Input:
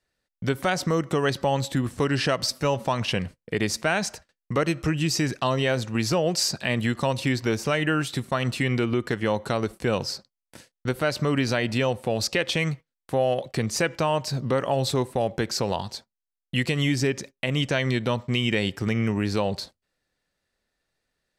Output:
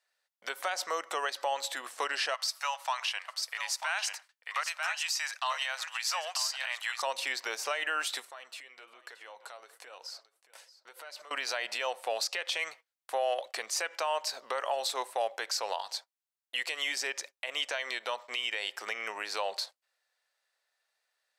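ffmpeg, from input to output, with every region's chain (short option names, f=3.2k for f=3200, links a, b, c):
-filter_complex "[0:a]asettb=1/sr,asplit=3[a][b][c];[a]atrim=end=2.344[d];[b]atrim=start=2.34:end=7.02,asetpts=PTS-STARTPTS,afade=t=in:d=0.004:c=qsin,afade=t=out:st=4.676:d=0.004:c=qsin,highpass=f=840:w=0.5412,highpass=f=840:w=1.3066,aecho=1:1:941:0.398,atrim=end_sample=206388[e];[c]atrim=start=7.016[f];[d][e]acrossfade=d=0.004:c1=hsin:c2=qsin[g];[g][f]acrossfade=d=0.004:c1=qsin:c2=hsin,asettb=1/sr,asplit=3[h][i][j];[h]atrim=end=8.254[k];[i]atrim=start=8.25:end=11.31,asetpts=PTS-STARTPTS,afade=t=in:d=0.004:c=qsin,afade=t=out:st=3.056:d=0.004:c=qsin,flanger=delay=2:depth=5.5:regen=60:speed=1.1:shape=sinusoidal,acompressor=threshold=-38dB:ratio=16:attack=3.2:release=140:knee=1:detection=peak,aecho=1:1:625:0.15,atrim=end_sample=134946[l];[j]atrim=start=11.306[m];[k][l]acrossfade=d=0.004:c1=hsin:c2=qsin[n];[n][m]acrossfade=d=0.004:c1=qsin:c2=hsin,highpass=f=640:w=0.5412,highpass=f=640:w=1.3066,alimiter=limit=-21dB:level=0:latency=1:release=140"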